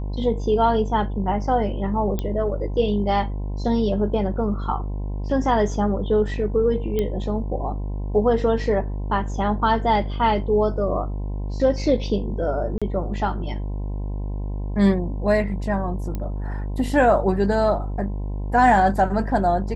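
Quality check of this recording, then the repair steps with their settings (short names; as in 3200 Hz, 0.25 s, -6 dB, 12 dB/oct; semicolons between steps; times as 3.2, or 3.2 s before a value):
buzz 50 Hz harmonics 21 -27 dBFS
2.19 pop -13 dBFS
6.99 pop -12 dBFS
12.78–12.82 gap 36 ms
16.15 pop -16 dBFS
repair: de-click; de-hum 50 Hz, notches 21; interpolate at 12.78, 36 ms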